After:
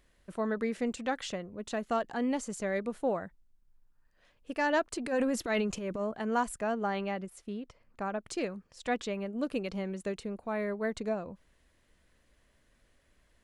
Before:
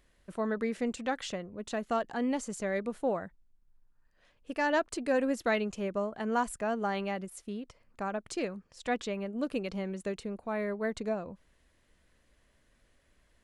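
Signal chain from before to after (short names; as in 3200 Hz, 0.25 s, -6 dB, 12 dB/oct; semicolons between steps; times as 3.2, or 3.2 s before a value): 4.98–6.12 transient shaper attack -10 dB, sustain +7 dB; 6.72–8.23 high shelf 6000 Hz -8 dB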